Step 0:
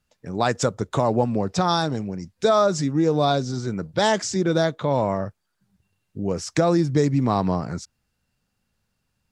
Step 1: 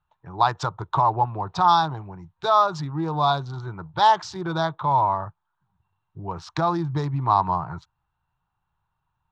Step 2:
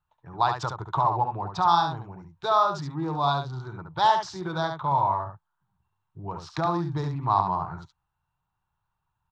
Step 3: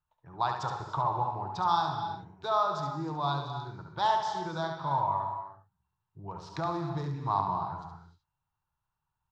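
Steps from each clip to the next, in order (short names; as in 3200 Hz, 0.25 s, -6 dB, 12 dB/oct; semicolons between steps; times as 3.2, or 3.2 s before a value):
Wiener smoothing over 9 samples; EQ curve 160 Hz 0 dB, 230 Hz -20 dB, 330 Hz -4 dB, 520 Hz -12 dB, 930 Hz +14 dB, 2100 Hz -6 dB, 4000 Hz +5 dB, 8400 Hz -16 dB; gain -2.5 dB
echo 70 ms -6 dB; gain -4 dB
non-linear reverb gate 0.34 s flat, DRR 6 dB; gain -6.5 dB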